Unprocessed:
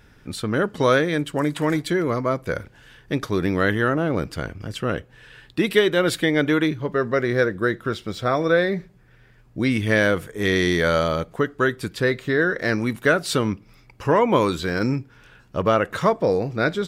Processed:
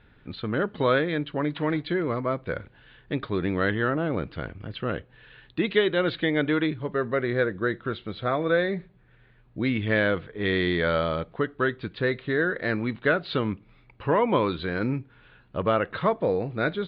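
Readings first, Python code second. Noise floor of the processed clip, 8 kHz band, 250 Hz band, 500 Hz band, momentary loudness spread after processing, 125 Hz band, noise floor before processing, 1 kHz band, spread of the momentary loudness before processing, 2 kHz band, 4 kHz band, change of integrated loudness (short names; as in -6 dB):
-58 dBFS, under -40 dB, -4.5 dB, -4.5 dB, 10 LU, -4.5 dB, -53 dBFS, -4.5 dB, 10 LU, -4.5 dB, -5.0 dB, -4.5 dB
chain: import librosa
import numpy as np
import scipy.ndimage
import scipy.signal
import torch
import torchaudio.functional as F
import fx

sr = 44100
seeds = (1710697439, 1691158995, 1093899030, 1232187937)

y = scipy.signal.sosfilt(scipy.signal.butter(12, 4200.0, 'lowpass', fs=sr, output='sos'), x)
y = y * 10.0 ** (-4.5 / 20.0)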